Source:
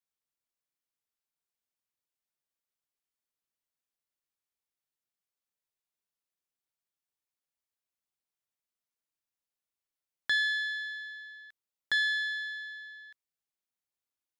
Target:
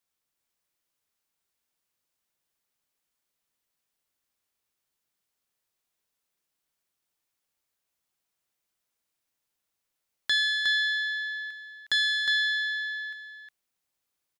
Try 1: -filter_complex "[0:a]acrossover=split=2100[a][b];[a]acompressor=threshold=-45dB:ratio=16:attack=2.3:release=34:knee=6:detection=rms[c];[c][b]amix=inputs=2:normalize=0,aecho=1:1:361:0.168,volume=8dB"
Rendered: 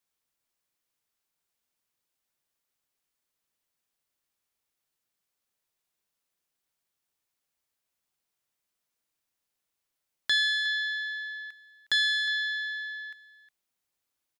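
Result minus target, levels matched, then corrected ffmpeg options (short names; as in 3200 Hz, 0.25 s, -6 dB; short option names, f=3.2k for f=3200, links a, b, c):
echo-to-direct -11 dB
-filter_complex "[0:a]acrossover=split=2100[a][b];[a]acompressor=threshold=-45dB:ratio=16:attack=2.3:release=34:knee=6:detection=rms[c];[c][b]amix=inputs=2:normalize=0,aecho=1:1:361:0.596,volume=8dB"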